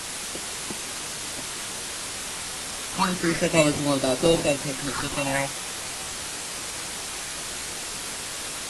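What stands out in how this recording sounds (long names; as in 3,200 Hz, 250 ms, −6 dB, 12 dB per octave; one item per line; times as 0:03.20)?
aliases and images of a low sample rate 3,300 Hz, jitter 0%
phaser sweep stages 6, 0.31 Hz, lowest notch 310–2,000 Hz
a quantiser's noise floor 6 bits, dither triangular
AAC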